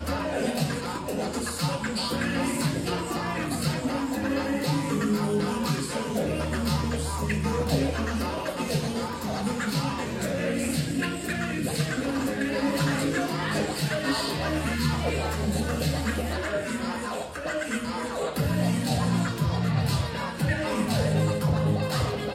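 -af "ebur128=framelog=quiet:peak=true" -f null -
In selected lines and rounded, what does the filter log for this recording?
Integrated loudness:
  I:         -27.5 LUFS
  Threshold: -37.5 LUFS
Loudness range:
  LRA:         2.3 LU
  Threshold: -47.5 LUFS
  LRA low:   -28.5 LUFS
  LRA high:  -26.2 LUFS
True peak:
  Peak:      -12.1 dBFS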